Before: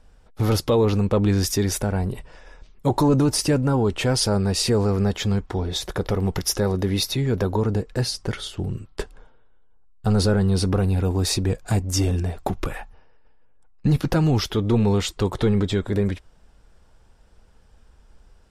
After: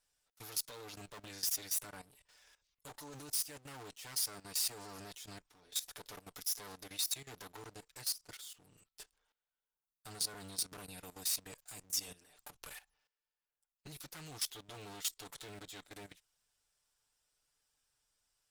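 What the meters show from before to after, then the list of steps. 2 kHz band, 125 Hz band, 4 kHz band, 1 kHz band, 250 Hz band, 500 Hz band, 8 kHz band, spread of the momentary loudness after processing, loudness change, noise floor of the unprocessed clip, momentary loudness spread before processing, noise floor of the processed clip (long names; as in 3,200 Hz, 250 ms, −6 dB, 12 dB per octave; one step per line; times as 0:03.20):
−18.0 dB, −36.5 dB, −13.0 dB, −22.5 dB, −34.0 dB, −31.0 dB, −8.5 dB, 18 LU, −17.0 dB, −54 dBFS, 9 LU, below −85 dBFS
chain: lower of the sound and its delayed copy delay 6.8 ms
first-order pre-emphasis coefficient 0.97
output level in coarse steps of 16 dB
level −1.5 dB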